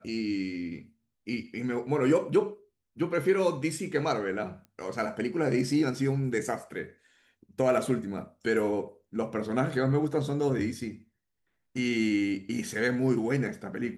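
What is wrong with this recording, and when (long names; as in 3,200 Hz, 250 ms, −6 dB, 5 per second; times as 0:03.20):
0:04.65: click −35 dBFS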